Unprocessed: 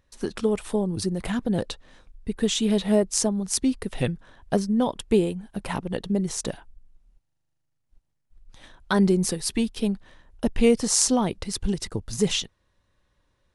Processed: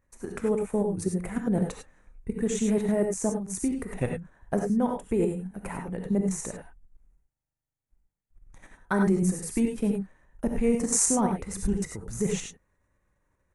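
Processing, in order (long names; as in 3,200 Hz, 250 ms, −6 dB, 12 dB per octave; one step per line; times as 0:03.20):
flat-topped bell 3,900 Hz −15 dB 1.1 octaves
output level in coarse steps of 12 dB
reverb whose tail is shaped and stops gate 120 ms rising, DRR 3 dB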